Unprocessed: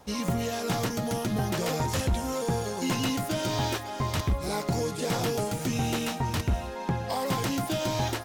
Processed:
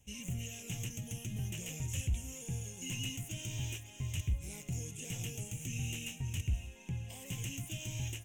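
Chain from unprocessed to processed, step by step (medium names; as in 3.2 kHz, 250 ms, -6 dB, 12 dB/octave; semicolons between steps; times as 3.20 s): FFT filter 120 Hz 0 dB, 190 Hz -9 dB, 1.3 kHz -27 dB, 2.8 kHz +3 dB, 4.5 kHz -24 dB, 6.5 kHz +4 dB, 10 kHz -3 dB; trim -6 dB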